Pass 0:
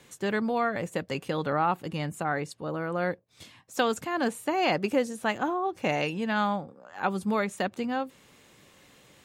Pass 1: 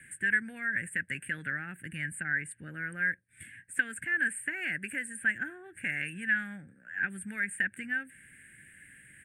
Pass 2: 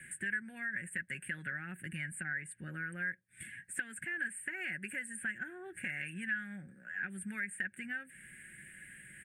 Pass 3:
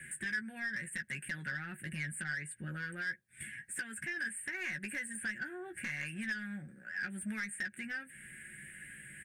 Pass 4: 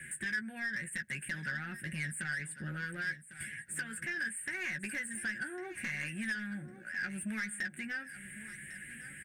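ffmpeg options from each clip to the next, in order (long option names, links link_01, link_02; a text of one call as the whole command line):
ffmpeg -i in.wav -filter_complex "[0:a]acrossover=split=610|6900[link_01][link_02][link_03];[link_01]acompressor=threshold=-38dB:ratio=4[link_04];[link_02]acompressor=threshold=-31dB:ratio=4[link_05];[link_03]acompressor=threshold=-53dB:ratio=4[link_06];[link_04][link_05][link_06]amix=inputs=3:normalize=0,firequalizer=gain_entry='entry(120,0);entry(290,-6);entry(460,-18);entry(770,-24);entry(1100,-30);entry(1600,14);entry(4000,-24);entry(6100,-27);entry(8600,13);entry(13000,-8)':delay=0.05:min_phase=1" out.wav
ffmpeg -i in.wav -af "aecho=1:1:5.4:0.44,acompressor=threshold=-43dB:ratio=2,volume=1dB" out.wav
ffmpeg -i in.wav -filter_complex "[0:a]asoftclip=type=tanh:threshold=-34dB,asplit=2[link_01][link_02];[link_02]adelay=14,volume=-7.5dB[link_03];[link_01][link_03]amix=inputs=2:normalize=0,volume=2dB" out.wav
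ffmpeg -i in.wav -filter_complex "[0:a]asplit=2[link_01][link_02];[link_02]asoftclip=type=tanh:threshold=-39.5dB,volume=-11dB[link_03];[link_01][link_03]amix=inputs=2:normalize=0,aecho=1:1:1102|2204:0.2|0.0319" out.wav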